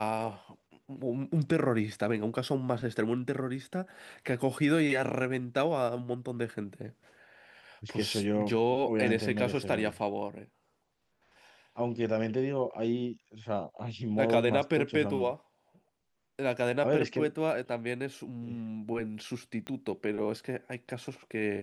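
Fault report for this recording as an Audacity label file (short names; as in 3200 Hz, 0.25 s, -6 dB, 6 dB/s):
19.670000	19.670000	pop -25 dBFS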